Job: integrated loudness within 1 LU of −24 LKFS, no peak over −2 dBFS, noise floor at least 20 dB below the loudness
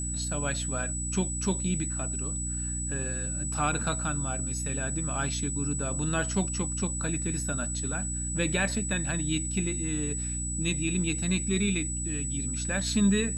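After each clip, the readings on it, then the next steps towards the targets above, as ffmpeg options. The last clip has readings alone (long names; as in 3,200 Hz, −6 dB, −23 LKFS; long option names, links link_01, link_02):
mains hum 60 Hz; hum harmonics up to 300 Hz; level of the hum −32 dBFS; interfering tone 7,900 Hz; level of the tone −33 dBFS; integrated loudness −29.0 LKFS; sample peak −13.0 dBFS; target loudness −24.0 LKFS
→ -af "bandreject=frequency=60:width_type=h:width=6,bandreject=frequency=120:width_type=h:width=6,bandreject=frequency=180:width_type=h:width=6,bandreject=frequency=240:width_type=h:width=6,bandreject=frequency=300:width_type=h:width=6"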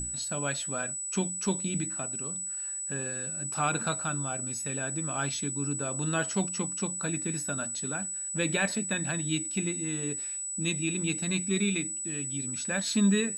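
mains hum none found; interfering tone 7,900 Hz; level of the tone −33 dBFS
→ -af "bandreject=frequency=7900:width=30"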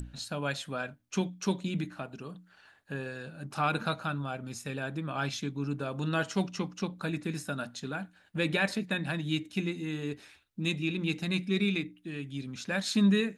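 interfering tone none found; integrated loudness −33.0 LKFS; sample peak −14.0 dBFS; target loudness −24.0 LKFS
→ -af "volume=9dB"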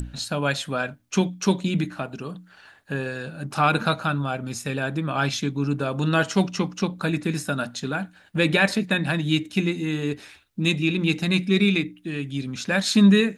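integrated loudness −24.0 LKFS; sample peak −5.0 dBFS; background noise floor −54 dBFS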